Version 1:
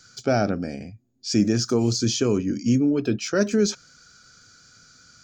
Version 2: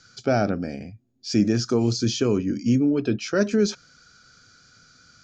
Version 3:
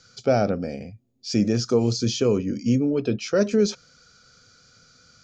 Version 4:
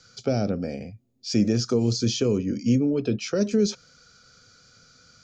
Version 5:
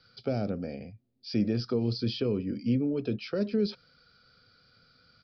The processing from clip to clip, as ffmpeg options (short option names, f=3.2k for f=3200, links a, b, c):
-af "lowpass=5.4k"
-af "equalizer=f=315:t=o:w=0.33:g=-5,equalizer=f=500:t=o:w=0.33:g=7,equalizer=f=1.6k:t=o:w=0.33:g=-6"
-filter_complex "[0:a]acrossover=split=420|3000[a][b][c];[b]acompressor=threshold=-31dB:ratio=6[d];[a][d][c]amix=inputs=3:normalize=0"
-af "aresample=11025,aresample=44100,volume=-6dB"